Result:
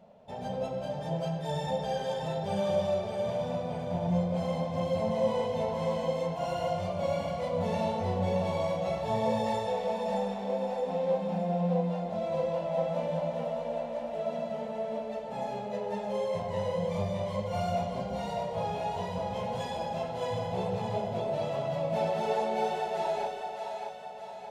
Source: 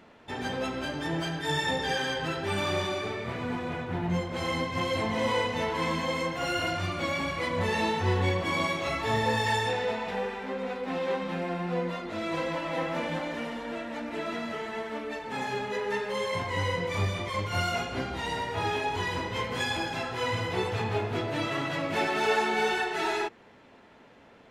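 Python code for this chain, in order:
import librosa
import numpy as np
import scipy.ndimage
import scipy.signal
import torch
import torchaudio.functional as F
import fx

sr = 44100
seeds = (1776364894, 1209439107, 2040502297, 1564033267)

y = fx.curve_eq(x, sr, hz=(100.0, 200.0, 300.0, 610.0, 1200.0, 1800.0, 2900.0, 5300.0), db=(0, 10, -13, 13, -7, -12, -6, -4))
y = fx.echo_split(y, sr, split_hz=480.0, low_ms=130, high_ms=618, feedback_pct=52, wet_db=-5)
y = y * 10.0 ** (-6.5 / 20.0)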